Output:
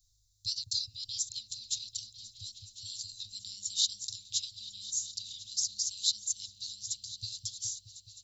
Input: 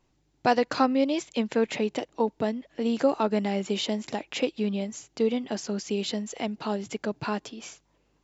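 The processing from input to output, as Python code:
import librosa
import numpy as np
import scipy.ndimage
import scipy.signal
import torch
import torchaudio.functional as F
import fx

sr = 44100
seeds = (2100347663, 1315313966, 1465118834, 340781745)

p1 = scipy.signal.sosfilt(scipy.signal.cheby1(5, 1.0, [110.0, 3800.0], 'bandstop', fs=sr, output='sos'), x)
p2 = fx.high_shelf(p1, sr, hz=3300.0, db=11.5)
y = p2 + fx.echo_opening(p2, sr, ms=210, hz=400, octaves=1, feedback_pct=70, wet_db=-3, dry=0)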